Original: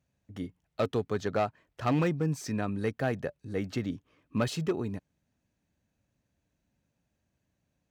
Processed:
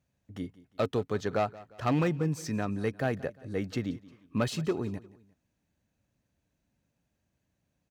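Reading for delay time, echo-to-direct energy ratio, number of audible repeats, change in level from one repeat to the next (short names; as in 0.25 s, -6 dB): 0.176 s, -19.5 dB, 2, -7.5 dB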